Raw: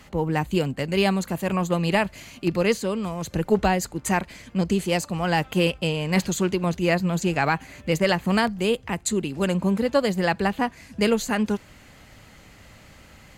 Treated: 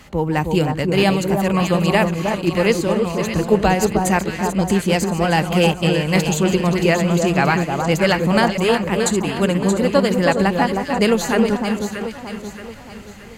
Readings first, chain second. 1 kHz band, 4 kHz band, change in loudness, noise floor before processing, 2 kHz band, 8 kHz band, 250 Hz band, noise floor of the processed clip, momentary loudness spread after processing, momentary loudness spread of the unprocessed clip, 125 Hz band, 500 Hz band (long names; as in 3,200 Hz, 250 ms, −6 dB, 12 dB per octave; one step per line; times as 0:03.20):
+6.5 dB, +5.5 dB, +6.0 dB, −50 dBFS, +6.0 dB, +5.5 dB, +6.5 dB, −36 dBFS, 6 LU, 6 LU, +6.5 dB, +6.5 dB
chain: delay that plays each chunk backwards 268 ms, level −10.5 dB
delay that swaps between a low-pass and a high-pass 313 ms, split 1,300 Hz, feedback 65%, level −4 dB
level +4.5 dB